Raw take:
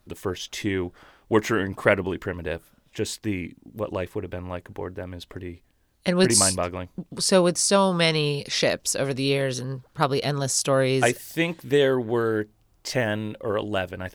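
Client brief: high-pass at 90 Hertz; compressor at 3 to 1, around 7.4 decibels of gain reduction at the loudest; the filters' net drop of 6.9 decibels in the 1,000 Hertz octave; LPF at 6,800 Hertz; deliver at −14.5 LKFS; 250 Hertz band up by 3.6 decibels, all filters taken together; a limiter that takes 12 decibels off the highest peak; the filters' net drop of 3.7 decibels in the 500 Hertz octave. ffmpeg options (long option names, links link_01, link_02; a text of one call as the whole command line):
ffmpeg -i in.wav -af "highpass=90,lowpass=6800,equalizer=frequency=250:width_type=o:gain=7.5,equalizer=frequency=500:width_type=o:gain=-5.5,equalizer=frequency=1000:width_type=o:gain=-8,acompressor=threshold=-23dB:ratio=3,volume=18.5dB,alimiter=limit=-4dB:level=0:latency=1" out.wav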